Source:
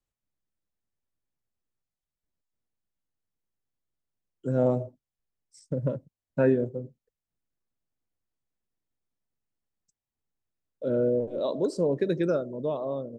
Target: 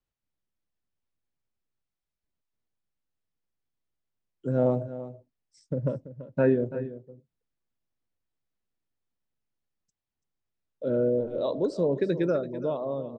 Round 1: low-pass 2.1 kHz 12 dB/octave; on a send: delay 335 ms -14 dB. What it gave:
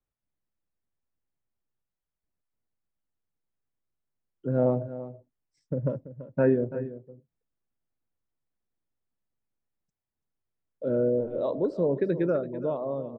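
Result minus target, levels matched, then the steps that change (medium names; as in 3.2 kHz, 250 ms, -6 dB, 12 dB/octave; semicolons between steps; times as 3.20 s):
4 kHz band -10.0 dB
change: low-pass 5.1 kHz 12 dB/octave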